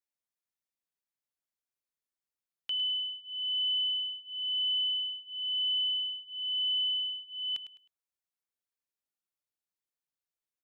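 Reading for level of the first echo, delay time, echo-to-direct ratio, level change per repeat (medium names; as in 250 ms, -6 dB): -12.0 dB, 104 ms, -11.5 dB, -10.5 dB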